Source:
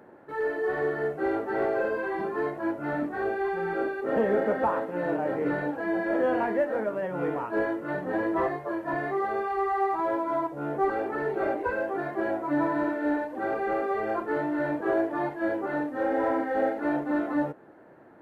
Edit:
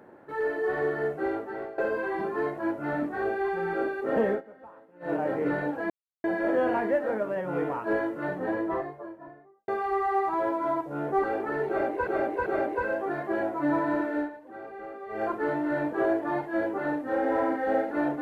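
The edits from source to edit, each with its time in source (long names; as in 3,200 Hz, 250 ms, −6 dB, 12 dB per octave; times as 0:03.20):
0:01.13–0:01.78: fade out, to −18 dB
0:04.29–0:05.13: duck −23 dB, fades 0.13 s
0:05.90: splice in silence 0.34 s
0:07.84–0:09.34: fade out and dull
0:11.34–0:11.73: repeat, 3 plays
0:13.03–0:14.11: duck −12.5 dB, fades 0.15 s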